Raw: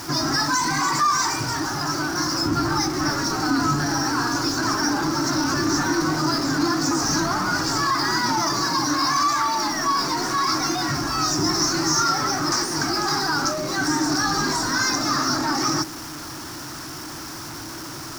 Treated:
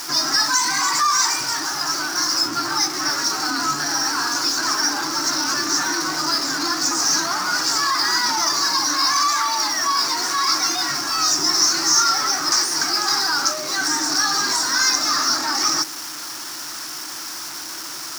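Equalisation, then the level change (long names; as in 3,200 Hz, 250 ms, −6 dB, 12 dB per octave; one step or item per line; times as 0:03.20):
high-pass filter 200 Hz 6 dB per octave
spectral tilt +3.5 dB per octave
high-shelf EQ 8,700 Hz −9 dB
0.0 dB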